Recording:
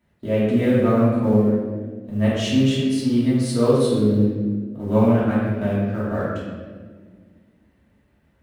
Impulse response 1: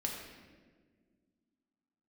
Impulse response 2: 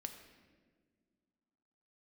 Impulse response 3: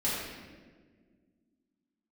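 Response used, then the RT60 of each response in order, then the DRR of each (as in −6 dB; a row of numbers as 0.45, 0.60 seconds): 3; 1.6 s, non-exponential decay, 1.6 s; −1.0, 5.5, −9.5 decibels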